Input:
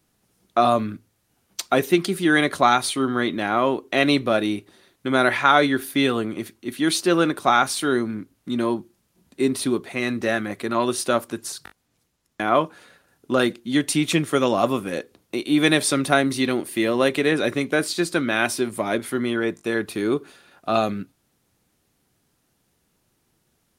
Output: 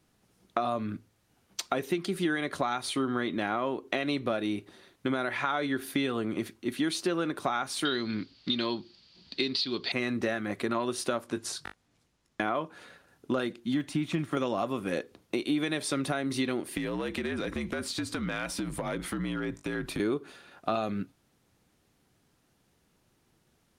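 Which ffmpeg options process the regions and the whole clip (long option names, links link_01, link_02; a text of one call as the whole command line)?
ffmpeg -i in.wav -filter_complex "[0:a]asettb=1/sr,asplit=3[link_01][link_02][link_03];[link_01]atrim=end=7.854[link_04];[link_02]atrim=start=7.85:end=9.92,asetpts=PTS-STARTPTS,afade=type=in:duration=0.004:curve=qsin,afade=type=out:start_time=2.066:duration=0.004:curve=qsin,lowpass=frequency=4600:width_type=q:width=10,equalizer=frequency=3200:width=0.94:gain=11[link_05];[link_03]atrim=start=9.916[link_06];[link_04][link_05]acrossfade=duration=0.004:curve1=hsin:curve2=qsin[link_07];[link_07][link_06]acrossfade=duration=0.004:curve1=qsin:curve2=hsin,asettb=1/sr,asplit=3[link_08][link_09][link_10];[link_08]atrim=end=11.224[link_11];[link_09]atrim=start=11.22:end=12.42,asetpts=PTS-STARTPTS,afade=type=in:duration=0.004:curve=qsin,afade=type=out:start_time=1.196:duration=0.004:curve=qsin,lowpass=11000,asplit=2[link_12][link_13];[link_13]adelay=20,volume=-11dB[link_14];[link_12][link_14]amix=inputs=2:normalize=0,atrim=end_sample=52920[link_15];[link_10]atrim=start=12.416[link_16];[link_11][link_15]acrossfade=duration=0.004:curve1=hsin:curve2=qsin[link_17];[link_17][link_16]acrossfade=duration=0.004:curve1=qsin:curve2=hsin,asettb=1/sr,asplit=3[link_18][link_19][link_20];[link_18]atrim=end=13.644[link_21];[link_19]atrim=start=13.64:end=14.37,asetpts=PTS-STARTPTS,afade=type=in:duration=0.004:curve=qsin,afade=type=out:start_time=0.726:duration=0.004:curve=qsin,deesser=1,equalizer=frequency=460:width=3.3:gain=-12[link_22];[link_20]atrim=start=14.366[link_23];[link_21][link_22]acrossfade=duration=0.004:curve1=hsin:curve2=qsin[link_24];[link_24][link_23]acrossfade=duration=0.004:curve1=qsin:curve2=hsin,asettb=1/sr,asplit=3[link_25][link_26][link_27];[link_25]atrim=end=16.774[link_28];[link_26]atrim=start=16.77:end=20,asetpts=PTS-STARTPTS,afade=type=in:duration=0.004:curve=qsin,afade=type=out:start_time=3.226:duration=0.004:curve=qsin,afreqshift=-60,acompressor=threshold=-28dB:ratio=8:attack=3.2:release=140:knee=1:detection=peak,aeval=exprs='clip(val(0),-1,0.0473)':channel_layout=same[link_29];[link_27]atrim=start=19.996[link_30];[link_28][link_29]acrossfade=duration=0.004:curve1=hsin:curve2=qsin[link_31];[link_31][link_30]acrossfade=duration=0.004:curve1=qsin:curve2=hsin,alimiter=limit=-9dB:level=0:latency=1:release=313,acompressor=threshold=-26dB:ratio=6,highshelf=frequency=8400:gain=-9" out.wav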